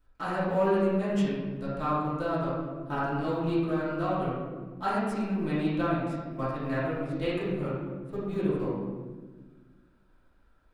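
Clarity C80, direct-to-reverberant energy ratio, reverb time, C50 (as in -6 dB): 1.5 dB, -11.5 dB, 1.4 s, -1.5 dB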